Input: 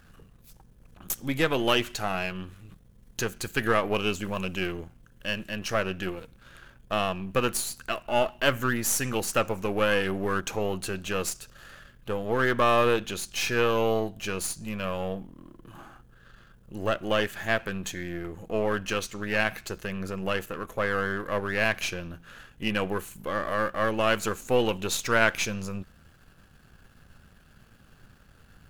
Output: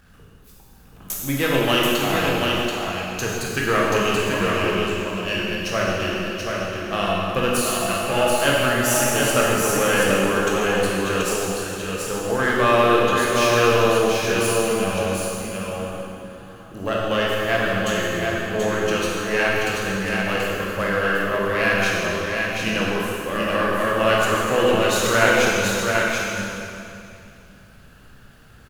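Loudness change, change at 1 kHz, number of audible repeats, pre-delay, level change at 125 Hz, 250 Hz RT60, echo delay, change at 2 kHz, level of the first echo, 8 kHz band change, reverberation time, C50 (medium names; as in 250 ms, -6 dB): +7.5 dB, +8.0 dB, 1, 7 ms, +7.5 dB, 2.5 s, 732 ms, +8.0 dB, -4.0 dB, +8.0 dB, 2.6 s, -4.0 dB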